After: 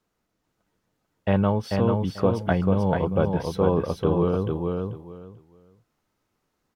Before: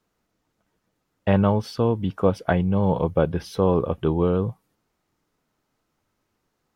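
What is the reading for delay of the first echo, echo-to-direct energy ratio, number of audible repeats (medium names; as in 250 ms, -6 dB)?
440 ms, -4.0 dB, 3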